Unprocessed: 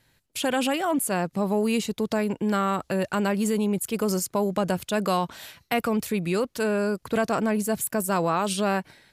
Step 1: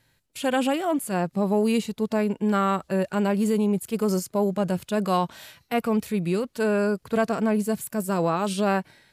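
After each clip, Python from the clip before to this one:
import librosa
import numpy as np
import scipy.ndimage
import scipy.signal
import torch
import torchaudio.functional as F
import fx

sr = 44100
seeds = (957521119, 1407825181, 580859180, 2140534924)

y = fx.hpss(x, sr, part='percussive', gain_db=-9)
y = y * librosa.db_to_amplitude(2.0)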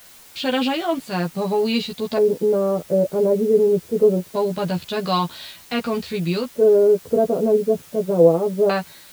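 y = fx.filter_lfo_lowpass(x, sr, shape='square', hz=0.23, low_hz=500.0, high_hz=4200.0, q=3.5)
y = fx.quant_dither(y, sr, seeds[0], bits=8, dither='triangular')
y = fx.doubler(y, sr, ms=12.0, db=-2.5)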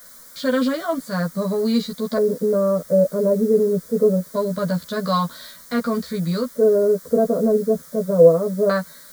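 y = fx.fixed_phaser(x, sr, hz=540.0, stages=8)
y = y * librosa.db_to_amplitude(3.0)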